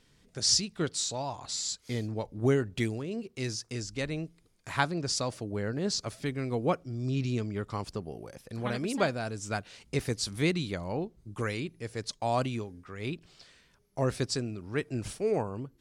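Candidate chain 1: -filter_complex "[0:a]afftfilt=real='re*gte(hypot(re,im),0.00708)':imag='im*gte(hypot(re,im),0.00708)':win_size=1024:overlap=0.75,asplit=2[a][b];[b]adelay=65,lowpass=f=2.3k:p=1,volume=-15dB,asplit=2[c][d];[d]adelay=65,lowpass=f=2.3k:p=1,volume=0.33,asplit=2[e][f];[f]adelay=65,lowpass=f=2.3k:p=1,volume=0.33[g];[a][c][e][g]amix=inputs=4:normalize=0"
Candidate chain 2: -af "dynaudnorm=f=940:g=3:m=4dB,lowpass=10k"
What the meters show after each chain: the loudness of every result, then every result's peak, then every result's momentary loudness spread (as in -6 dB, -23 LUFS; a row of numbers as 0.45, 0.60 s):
-32.0, -29.0 LUFS; -10.0, -6.0 dBFS; 10, 9 LU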